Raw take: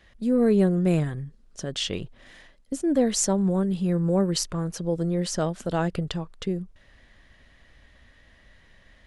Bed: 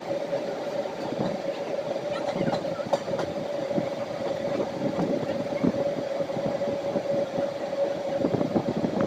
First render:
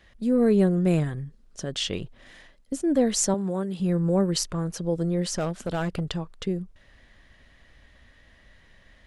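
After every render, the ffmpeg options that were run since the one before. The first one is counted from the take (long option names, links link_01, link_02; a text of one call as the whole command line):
ffmpeg -i in.wav -filter_complex "[0:a]asettb=1/sr,asplit=3[link_01][link_02][link_03];[link_01]atrim=end=3.344[link_04];[link_02]atrim=start=3.34:end=3.8,asetpts=PTS-STARTPTS,afade=type=in:duration=0.004:curve=qsin,afade=type=out:start_time=0.456:duration=0.004:curve=qsin,highpass=frequency=330:poles=1[link_05];[link_03]atrim=start=3.796[link_06];[link_04][link_05]acrossfade=duration=0.004:curve1=hsin:curve2=qsin[link_07];[link_07][link_06]acrossfade=duration=0.004:curve1=qsin:curve2=hsin,asplit=3[link_08][link_09][link_10];[link_08]afade=type=out:start_time=5.25:duration=0.02[link_11];[link_09]asoftclip=type=hard:threshold=-22dB,afade=type=in:start_time=5.25:duration=0.02,afade=type=out:start_time=5.99:duration=0.02[link_12];[link_10]afade=type=in:start_time=5.99:duration=0.02[link_13];[link_11][link_12][link_13]amix=inputs=3:normalize=0" out.wav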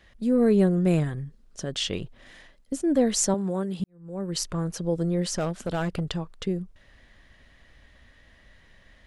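ffmpeg -i in.wav -filter_complex "[0:a]asplit=2[link_01][link_02];[link_01]atrim=end=3.84,asetpts=PTS-STARTPTS,afade=type=out:start_time=3.836:duration=0.004:curve=hsin[link_03];[link_02]atrim=start=3.84,asetpts=PTS-STARTPTS,afade=type=in:duration=0.64:curve=qua[link_04];[link_03][link_04]concat=n=2:v=0:a=1" out.wav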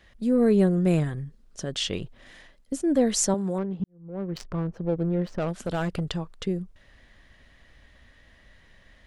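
ffmpeg -i in.wav -filter_complex "[0:a]asettb=1/sr,asplit=3[link_01][link_02][link_03];[link_01]atrim=end=3.584[link_04];[link_02]atrim=start=3.58:end=5.48,asetpts=PTS-STARTPTS,afade=type=in:duration=0.004:curve=qsin,afade=type=out:start_time=1.896:duration=0.004:curve=qsin,adynamicsmooth=sensitivity=2.5:basefreq=890[link_05];[link_03]atrim=start=5.476[link_06];[link_04][link_05]acrossfade=duration=0.004:curve1=hsin:curve2=qsin[link_07];[link_07][link_06]acrossfade=duration=0.004:curve1=qsin:curve2=hsin" out.wav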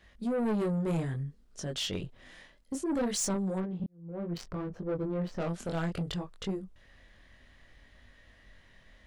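ffmpeg -i in.wav -af "flanger=delay=20:depth=4.2:speed=0.61,asoftclip=type=tanh:threshold=-26.5dB" out.wav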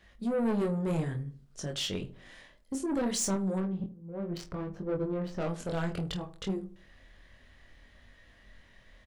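ffmpeg -i in.wav -filter_complex "[0:a]asplit=2[link_01][link_02];[link_02]adelay=26,volume=-10.5dB[link_03];[link_01][link_03]amix=inputs=2:normalize=0,asplit=2[link_04][link_05];[link_05]adelay=78,lowpass=frequency=950:poles=1,volume=-13dB,asplit=2[link_06][link_07];[link_07]adelay=78,lowpass=frequency=950:poles=1,volume=0.37,asplit=2[link_08][link_09];[link_09]adelay=78,lowpass=frequency=950:poles=1,volume=0.37,asplit=2[link_10][link_11];[link_11]adelay=78,lowpass=frequency=950:poles=1,volume=0.37[link_12];[link_04][link_06][link_08][link_10][link_12]amix=inputs=5:normalize=0" out.wav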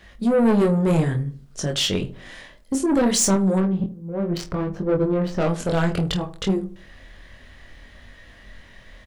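ffmpeg -i in.wav -af "volume=11.5dB" out.wav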